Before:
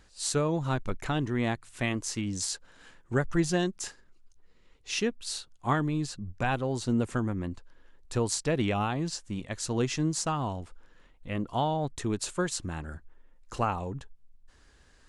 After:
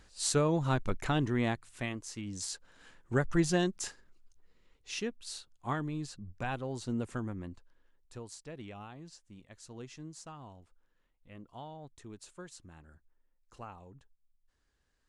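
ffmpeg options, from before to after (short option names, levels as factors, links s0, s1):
-af "volume=2.66,afade=t=out:st=1.26:d=0.78:silence=0.316228,afade=t=in:st=2.04:d=1.27:silence=0.354813,afade=t=out:st=3.84:d=1.16:silence=0.501187,afade=t=out:st=7.28:d=0.96:silence=0.298538"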